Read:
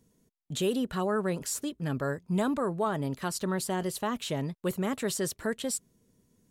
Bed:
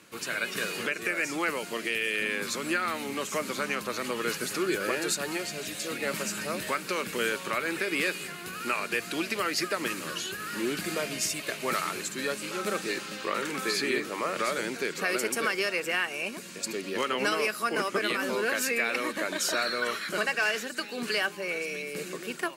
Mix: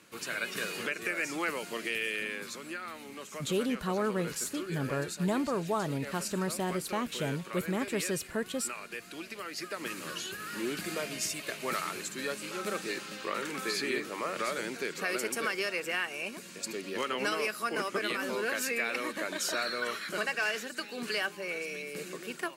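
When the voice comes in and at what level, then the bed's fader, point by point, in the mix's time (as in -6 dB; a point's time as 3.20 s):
2.90 s, -2.0 dB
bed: 2.04 s -3.5 dB
2.70 s -11.5 dB
9.47 s -11.5 dB
10.06 s -4 dB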